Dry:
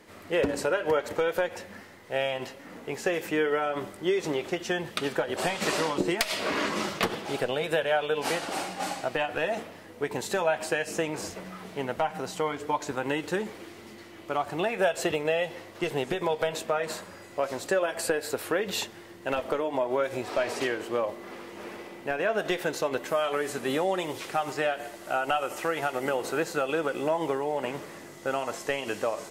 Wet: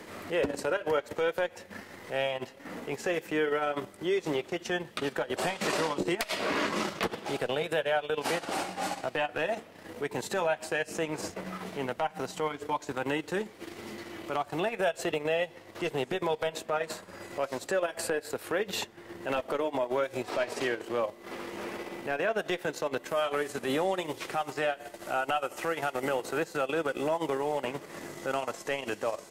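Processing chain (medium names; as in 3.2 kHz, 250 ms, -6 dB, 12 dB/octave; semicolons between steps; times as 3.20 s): transient shaper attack -7 dB, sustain -11 dB; three bands compressed up and down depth 40%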